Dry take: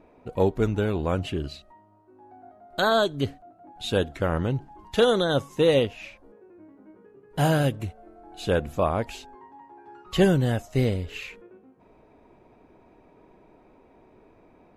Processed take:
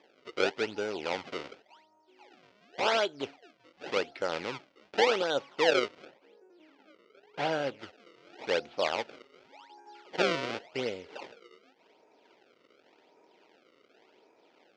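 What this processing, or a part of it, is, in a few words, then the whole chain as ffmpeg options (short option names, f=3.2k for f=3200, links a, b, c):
circuit-bent sampling toy: -filter_complex "[0:a]acrusher=samples=30:mix=1:aa=0.000001:lfo=1:lforange=48:lforate=0.89,highpass=550,equalizer=f=680:t=q:w=4:g=-5,equalizer=f=1.1k:t=q:w=4:g=-8,equalizer=f=1.7k:t=q:w=4:g=-5,equalizer=f=3.9k:t=q:w=4:g=-4,lowpass=f=4.7k:w=0.5412,lowpass=f=4.7k:w=1.3066,asettb=1/sr,asplit=3[a][b][c];[a]atrim=end=6.054[d];[b]atrim=start=6.05:end=7.79,asetpts=PTS-STARTPTS,afade=t=in:d=0.004:c=qsin,afade=t=out:st=1.736:d=0.004:c=qsin,equalizer=f=6.4k:t=o:w=1.9:g=-6[e];[c]atrim=start=7.786[f];[d][e]acrossfade=d=0.004:c1=hsin:c2=qsin[g];[g][f]acrossfade=d=0.004:c1=qsin:c2=hsin"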